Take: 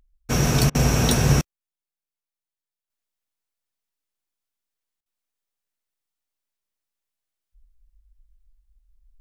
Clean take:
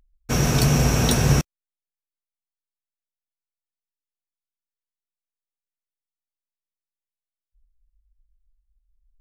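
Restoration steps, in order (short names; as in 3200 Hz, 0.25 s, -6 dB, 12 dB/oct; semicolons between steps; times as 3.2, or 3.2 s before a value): interpolate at 0.7/5.01, 47 ms; gain 0 dB, from 2.9 s -7 dB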